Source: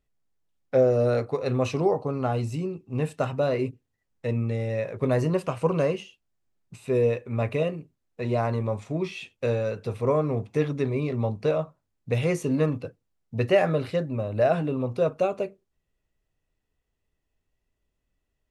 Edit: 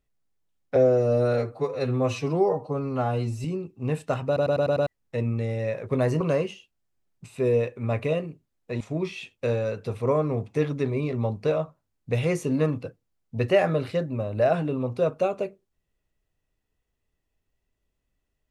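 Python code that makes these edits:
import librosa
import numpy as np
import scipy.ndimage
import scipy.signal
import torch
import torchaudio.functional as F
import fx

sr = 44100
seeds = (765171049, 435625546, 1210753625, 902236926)

y = fx.edit(x, sr, fx.stretch_span(start_s=0.76, length_s=1.79, factor=1.5),
    fx.stutter_over(start_s=3.37, slice_s=0.1, count=6),
    fx.cut(start_s=5.31, length_s=0.39),
    fx.cut(start_s=8.3, length_s=0.5), tone=tone)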